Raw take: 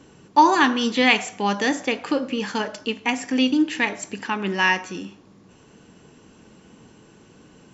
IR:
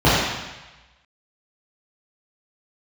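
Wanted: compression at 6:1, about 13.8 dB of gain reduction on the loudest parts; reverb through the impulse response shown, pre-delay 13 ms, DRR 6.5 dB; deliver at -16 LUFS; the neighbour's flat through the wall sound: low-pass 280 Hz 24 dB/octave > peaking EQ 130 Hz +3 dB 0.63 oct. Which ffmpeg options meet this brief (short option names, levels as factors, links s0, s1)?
-filter_complex "[0:a]acompressor=threshold=0.0631:ratio=6,asplit=2[s0][s1];[1:a]atrim=start_sample=2205,adelay=13[s2];[s1][s2]afir=irnorm=-1:irlink=0,volume=0.0251[s3];[s0][s3]amix=inputs=2:normalize=0,lowpass=f=280:w=0.5412,lowpass=f=280:w=1.3066,equalizer=f=130:t=o:w=0.63:g=3,volume=7.5"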